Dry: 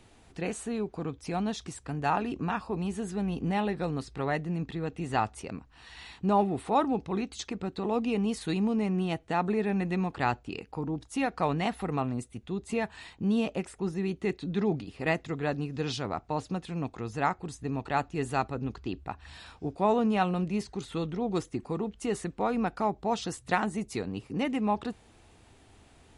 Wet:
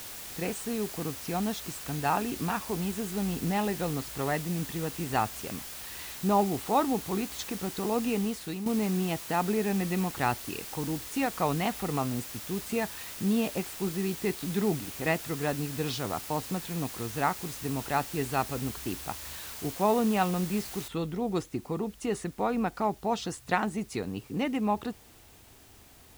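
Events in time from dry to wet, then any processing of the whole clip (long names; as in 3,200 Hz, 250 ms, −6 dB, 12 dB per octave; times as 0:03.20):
0:08.11–0:08.66: fade out, to −9.5 dB
0:20.88: noise floor change −42 dB −58 dB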